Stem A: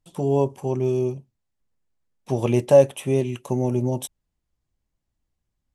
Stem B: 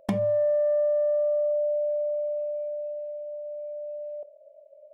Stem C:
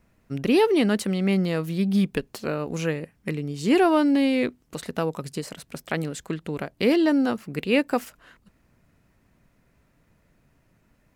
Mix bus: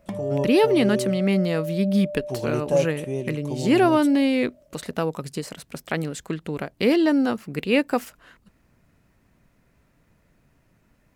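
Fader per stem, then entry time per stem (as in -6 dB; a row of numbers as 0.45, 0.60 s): -7.5, -5.5, +1.0 dB; 0.00, 0.00, 0.00 s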